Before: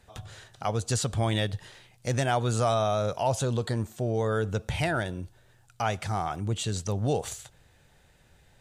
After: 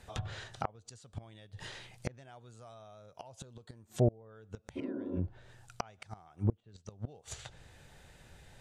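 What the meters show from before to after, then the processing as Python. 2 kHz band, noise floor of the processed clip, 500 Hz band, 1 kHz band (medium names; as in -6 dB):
-15.5 dB, -66 dBFS, -12.5 dB, -16.0 dB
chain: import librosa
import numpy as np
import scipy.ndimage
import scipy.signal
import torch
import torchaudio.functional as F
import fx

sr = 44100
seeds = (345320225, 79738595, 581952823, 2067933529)

y = fx.gate_flip(x, sr, shuts_db=-21.0, range_db=-31)
y = fx.spec_repair(y, sr, seeds[0], start_s=4.79, length_s=0.37, low_hz=210.0, high_hz=1400.0, source='after')
y = fx.env_lowpass_down(y, sr, base_hz=930.0, full_db=-33.5)
y = F.gain(torch.from_numpy(y), 3.5).numpy()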